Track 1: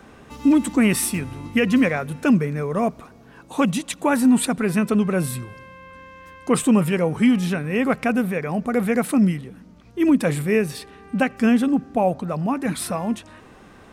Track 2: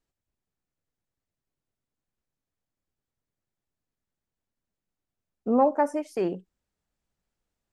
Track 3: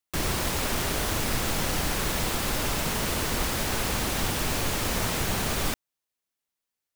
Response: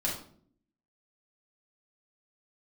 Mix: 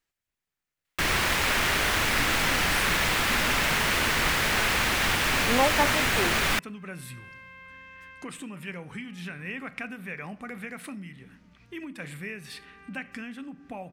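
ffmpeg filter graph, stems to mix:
-filter_complex "[0:a]equalizer=f=700:w=0.48:g=-6,acompressor=threshold=0.0355:ratio=12,adelay=1750,volume=0.316,asplit=2[s0][s1];[s1]volume=0.141[s2];[1:a]highshelf=f=5200:g=10,volume=0.473[s3];[2:a]adelay=850,volume=0.75[s4];[3:a]atrim=start_sample=2205[s5];[s2][s5]afir=irnorm=-1:irlink=0[s6];[s0][s3][s4][s6]amix=inputs=4:normalize=0,equalizer=f=2000:w=0.63:g=12.5"

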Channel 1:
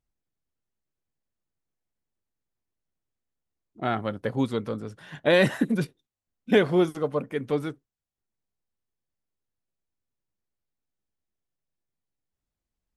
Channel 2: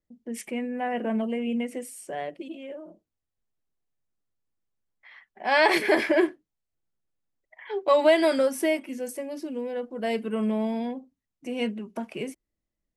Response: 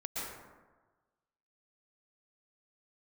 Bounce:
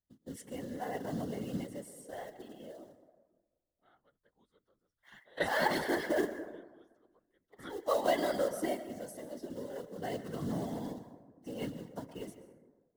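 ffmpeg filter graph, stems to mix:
-filter_complex "[0:a]highpass=f=740:p=1,volume=0.841[s0];[1:a]acrusher=bits=4:mode=log:mix=0:aa=0.000001,volume=0.501,asplit=3[s1][s2][s3];[s2]volume=0.282[s4];[s3]apad=whole_len=571627[s5];[s0][s5]sidechaingate=range=0.0316:threshold=0.00178:ratio=16:detection=peak[s6];[2:a]atrim=start_sample=2205[s7];[s4][s7]afir=irnorm=-1:irlink=0[s8];[s6][s1][s8]amix=inputs=3:normalize=0,asuperstop=centerf=2400:order=4:qfactor=3.3,equalizer=f=69:w=4:g=12,afftfilt=real='hypot(re,im)*cos(2*PI*random(0))':imag='hypot(re,im)*sin(2*PI*random(1))':win_size=512:overlap=0.75"

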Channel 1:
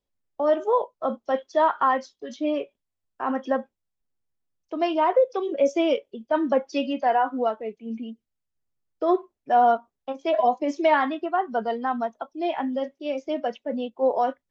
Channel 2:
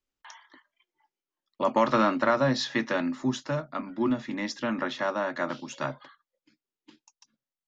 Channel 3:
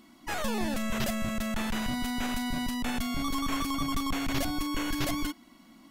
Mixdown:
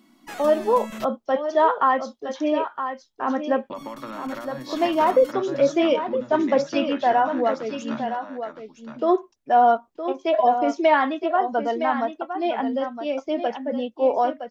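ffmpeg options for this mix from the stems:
-filter_complex "[0:a]volume=1.26,asplit=2[s0][s1];[s1]volume=0.355[s2];[1:a]agate=range=0.0224:threshold=0.00282:ratio=3:detection=peak,adelay=2100,volume=0.841,asplit=2[s3][s4];[s4]volume=0.266[s5];[2:a]lowshelf=f=130:t=q:w=1.5:g=-13.5,volume=0.708,asplit=3[s6][s7][s8];[s6]atrim=end=1.05,asetpts=PTS-STARTPTS,afade=t=out:st=1.046:d=0.004:c=hsin[s9];[s7]atrim=start=1.05:end=3.76,asetpts=PTS-STARTPTS,volume=0[s10];[s8]atrim=start=3.76,asetpts=PTS-STARTPTS,afade=t=in:d=0.004:c=hsin[s11];[s9][s10][s11]concat=n=3:v=0:a=1[s12];[s3][s12]amix=inputs=2:normalize=0,acompressor=threshold=0.0282:ratio=16,volume=1[s13];[s2][s5]amix=inputs=2:normalize=0,aecho=0:1:965:1[s14];[s0][s13][s14]amix=inputs=3:normalize=0"

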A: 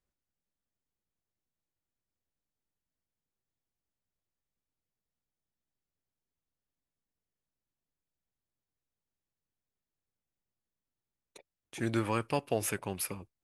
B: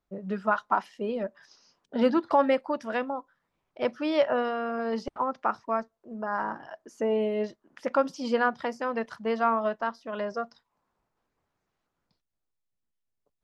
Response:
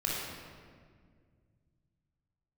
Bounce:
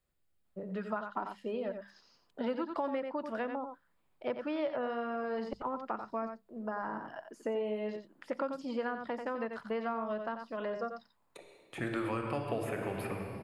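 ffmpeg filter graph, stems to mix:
-filter_complex "[0:a]volume=1.12,asplit=2[s0][s1];[s1]volume=0.562[s2];[1:a]adelay=450,volume=0.75,asplit=2[s3][s4];[s4]volume=0.376[s5];[2:a]atrim=start_sample=2205[s6];[s2][s6]afir=irnorm=-1:irlink=0[s7];[s5]aecho=0:1:89:1[s8];[s0][s3][s7][s8]amix=inputs=4:normalize=0,equalizer=f=5900:w=5.7:g=-12,acrossover=split=510|2500[s9][s10][s11];[s9]acompressor=threshold=0.0141:ratio=4[s12];[s10]acompressor=threshold=0.0126:ratio=4[s13];[s11]acompressor=threshold=0.00112:ratio=4[s14];[s12][s13][s14]amix=inputs=3:normalize=0,bandreject=f=50:t=h:w=6,bandreject=f=100:t=h:w=6,bandreject=f=150:t=h:w=6,bandreject=f=200:t=h:w=6"

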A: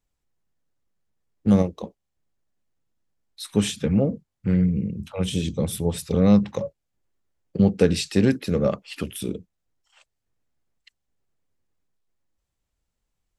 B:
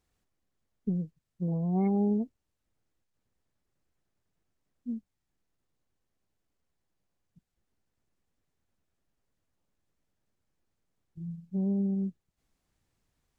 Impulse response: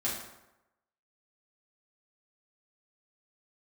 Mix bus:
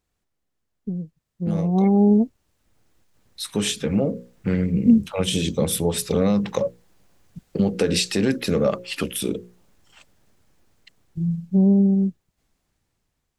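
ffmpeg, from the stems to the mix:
-filter_complex "[0:a]lowshelf=f=140:g=-11.5,bandreject=f=60:t=h:w=6,bandreject=f=120:t=h:w=6,bandreject=f=180:t=h:w=6,bandreject=f=240:t=h:w=6,bandreject=f=300:t=h:w=6,bandreject=f=360:t=h:w=6,bandreject=f=420:t=h:w=6,bandreject=f=480:t=h:w=6,bandreject=f=540:t=h:w=6,alimiter=limit=0.126:level=0:latency=1:release=124,volume=0.708[s0];[1:a]dynaudnorm=f=750:g=5:m=3.55,volume=1[s1];[s0][s1]amix=inputs=2:normalize=0,dynaudnorm=f=270:g=21:m=3.76"

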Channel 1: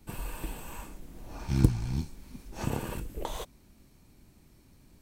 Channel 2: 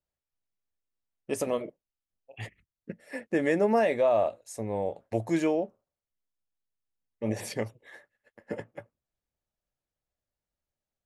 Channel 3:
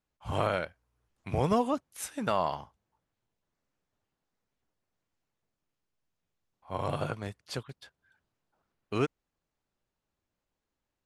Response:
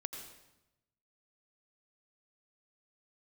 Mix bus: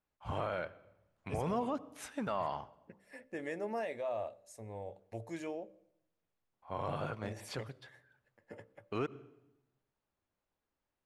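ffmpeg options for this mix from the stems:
-filter_complex "[1:a]equalizer=f=96:t=o:w=0.55:g=10.5,bandreject=f=64.67:t=h:w=4,bandreject=f=129.34:t=h:w=4,bandreject=f=194.01:t=h:w=4,bandreject=f=258.68:t=h:w=4,bandreject=f=323.35:t=h:w=4,bandreject=f=388.02:t=h:w=4,bandreject=f=452.69:t=h:w=4,bandreject=f=517.36:t=h:w=4,bandreject=f=582.03:t=h:w=4,volume=0.237,asplit=2[s0][s1];[s1]volume=0.0944[s2];[2:a]lowpass=f=1900:p=1,volume=1.06,asplit=2[s3][s4];[s4]volume=0.119[s5];[s0][s3]amix=inputs=2:normalize=0,lowshelf=f=360:g=-7,alimiter=level_in=1.58:limit=0.0631:level=0:latency=1:release=11,volume=0.631,volume=1[s6];[3:a]atrim=start_sample=2205[s7];[s2][s5]amix=inputs=2:normalize=0[s8];[s8][s7]afir=irnorm=-1:irlink=0[s9];[s6][s9]amix=inputs=2:normalize=0"

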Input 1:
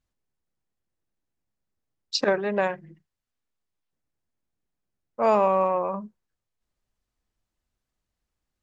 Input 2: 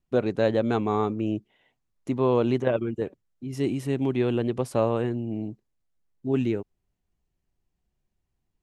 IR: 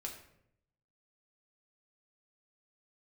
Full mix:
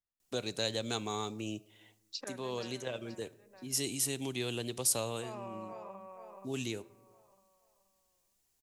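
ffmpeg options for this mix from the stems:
-filter_complex "[0:a]volume=0.188,asplit=3[s0][s1][s2];[s1]volume=0.335[s3];[1:a]bass=f=250:g=-7,treble=f=4000:g=15,adelay=200,volume=1.19,asplit=2[s4][s5];[s5]volume=0.251[s6];[s2]apad=whole_len=389011[s7];[s4][s7]sidechaincompress=threshold=0.00891:ratio=3:attack=16:release=911[s8];[2:a]atrim=start_sample=2205[s9];[s6][s9]afir=irnorm=-1:irlink=0[s10];[s3]aecho=0:1:477|954|1431|1908|2385:1|0.38|0.144|0.0549|0.0209[s11];[s0][s8][s10][s11]amix=inputs=4:normalize=0,acrossover=split=150|3000[s12][s13][s14];[s13]acompressor=threshold=0.00562:ratio=2[s15];[s12][s15][s14]amix=inputs=3:normalize=0,lowshelf=f=300:g=-7"

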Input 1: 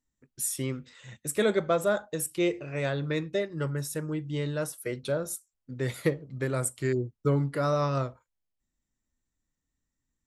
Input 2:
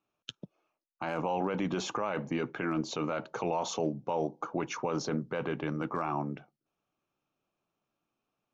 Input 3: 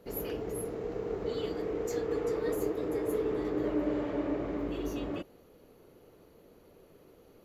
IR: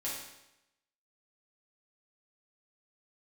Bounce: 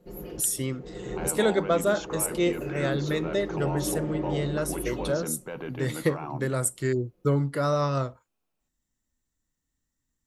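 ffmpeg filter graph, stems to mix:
-filter_complex "[0:a]highshelf=f=5800:g=4,bandreject=f=2400:w=12,volume=1.19,asplit=2[s0][s1];[1:a]bandreject=f=1200:w=11,adelay=150,volume=0.708[s2];[2:a]dynaudnorm=f=110:g=17:m=3.55,lowshelf=f=400:g=10.5,aecho=1:1:5.6:0.91,volume=0.316[s3];[s1]apad=whole_len=328320[s4];[s3][s4]sidechaincompress=threshold=0.02:ratio=5:attack=9.4:release=985[s5];[s0][s2][s5]amix=inputs=3:normalize=0"

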